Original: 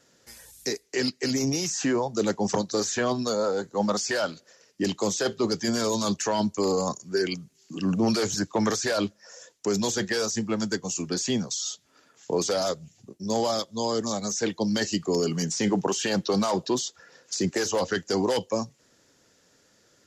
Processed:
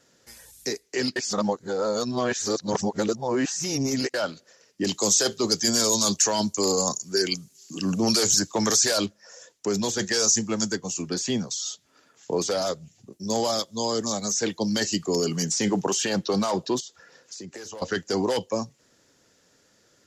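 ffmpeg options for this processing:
-filter_complex "[0:a]asettb=1/sr,asplit=3[s0][s1][s2];[s0]atrim=end=4.874[s3];[s1]atrim=start=4.87:end=9.06,asetpts=PTS-STARTPTS,afade=t=in:d=0.004:c=qsin,afade=t=out:st=4.186:d=0.004:c=qsin,bass=f=250:g=-1,treble=f=4000:g=13[s4];[s2]atrim=start=9.056[s5];[s3][s4]acrossfade=d=0.004:c1=hsin:c2=qsin[s6];[s6][s5]acrossfade=d=0.004:c1=qsin:c2=hsin,asettb=1/sr,asplit=3[s7][s8][s9];[s7]atrim=end=9.994[s10];[s8]atrim=start=9.99:end=10.72,asetpts=PTS-STARTPTS,afade=t=in:d=0.004:c=qsin,afade=t=out:st=0.726:d=0.004:c=qsin,equalizer=f=6600:w=1.5:g=13[s11];[s9]atrim=start=10.716[s12];[s10][s11]acrossfade=d=0.004:c1=hsin:c2=qsin[s13];[s13][s12]acrossfade=d=0.004:c1=qsin:c2=hsin,asettb=1/sr,asplit=3[s14][s15][s16];[s14]atrim=end=13.124[s17];[s15]atrim=start=13.12:end=16.05,asetpts=PTS-STARTPTS,afade=t=in:d=0.004:c=qsin,afade=t=out:st=2.926:d=0.004:c=qsin,highshelf=f=5300:g=7.5[s18];[s16]atrim=start=16.046[s19];[s17][s18]acrossfade=d=0.004:c1=hsin:c2=qsin[s20];[s20][s19]acrossfade=d=0.004:c1=qsin:c2=hsin,asettb=1/sr,asplit=3[s21][s22][s23];[s21]atrim=end=16.804[s24];[s22]atrim=start=16.8:end=17.82,asetpts=PTS-STARTPTS,afade=t=in:d=0.004:c=qsin,afade=t=out:st=1.016:d=0.004:c=qsin,acompressor=threshold=0.0141:ratio=6:attack=3.2:release=140:knee=1:detection=peak[s25];[s23]atrim=start=17.816[s26];[s24][s25]acrossfade=d=0.004:c1=hsin:c2=qsin[s27];[s27][s26]acrossfade=d=0.004:c1=qsin:c2=hsin,asplit=3[s28][s29][s30];[s28]atrim=end=1.162[s31];[s29]atrim=start=1.158:end=4.142,asetpts=PTS-STARTPTS,areverse[s32];[s30]atrim=start=4.138[s33];[s31][s32]acrossfade=d=0.004:c1=hsin:c2=hsin[s34];[s34][s33]acrossfade=d=0.004:c1=hsin:c2=hsin"

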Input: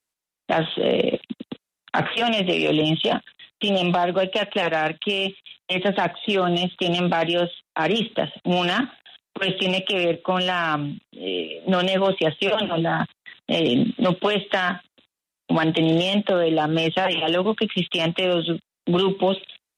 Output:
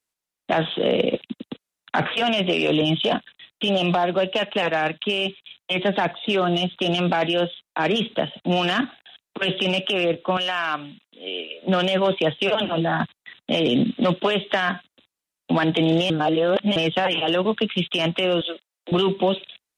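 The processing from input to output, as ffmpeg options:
-filter_complex "[0:a]asettb=1/sr,asplit=3[s0][s1][s2];[s0]atrim=end=10.374[s3];[s1]atrim=start=10.37:end=11.63,asetpts=PTS-STARTPTS,afade=t=in:d=0.004:c=qsin,afade=t=out:st=1.256:d=0.004:c=qsin,highpass=f=770:p=1[s4];[s2]atrim=start=11.626[s5];[s3][s4]acrossfade=d=0.004:c1=hsin:c2=qsin[s6];[s6][s5]acrossfade=d=0.004:c1=qsin:c2=hsin,asettb=1/sr,asplit=3[s7][s8][s9];[s7]atrim=end=18.414[s10];[s8]atrim=start=18.41:end=18.92,asetpts=PTS-STARTPTS,afade=t=in:d=0.004:c=qsin,afade=t=out:st=0.506:d=0.004:c=qsin,highpass=f=450:w=0.5412,highpass=f=450:w=1.3066[s11];[s9]atrim=start=18.916[s12];[s10][s11]acrossfade=d=0.004:c1=hsin:c2=qsin[s13];[s13][s12]acrossfade=d=0.004:c1=qsin:c2=hsin,asplit=3[s14][s15][s16];[s14]atrim=end=16.102[s17];[s15]atrim=start=16.098:end=16.762,asetpts=PTS-STARTPTS,areverse[s18];[s16]atrim=start=16.758[s19];[s17][s18]acrossfade=d=0.004:c1=hsin:c2=hsin[s20];[s20][s19]acrossfade=d=0.004:c1=hsin:c2=hsin"

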